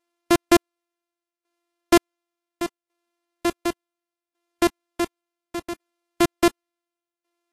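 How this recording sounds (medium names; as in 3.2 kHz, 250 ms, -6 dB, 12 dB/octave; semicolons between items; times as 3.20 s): a buzz of ramps at a fixed pitch in blocks of 128 samples; tremolo saw down 0.69 Hz, depth 85%; Vorbis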